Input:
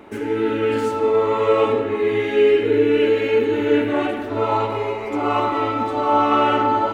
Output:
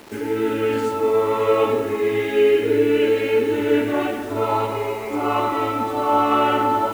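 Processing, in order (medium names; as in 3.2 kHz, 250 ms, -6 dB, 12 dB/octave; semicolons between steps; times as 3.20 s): bit crusher 7-bit; trim -1 dB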